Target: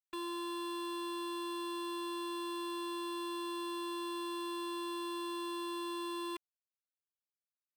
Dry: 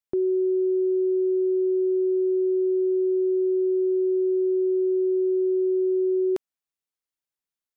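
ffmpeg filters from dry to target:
-af "aeval=exprs='0.0211*(abs(mod(val(0)/0.0211+3,4)-2)-1)':c=same,acrusher=bits=8:mix=0:aa=0.000001,afftfilt=real='hypot(re,im)*cos(PI*b)':imag='0':win_size=512:overlap=0.75,volume=2.5dB"

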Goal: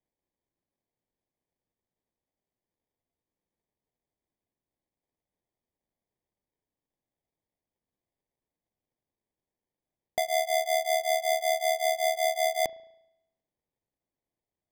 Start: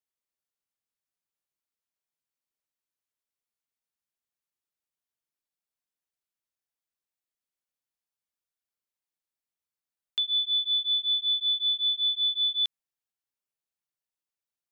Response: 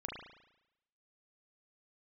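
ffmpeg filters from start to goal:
-filter_complex "[0:a]acrusher=samples=32:mix=1:aa=0.000001,asplit=2[a][b];[1:a]atrim=start_sample=2205[c];[b][c]afir=irnorm=-1:irlink=0,volume=-15.5dB[d];[a][d]amix=inputs=2:normalize=0,volume=-1.5dB"

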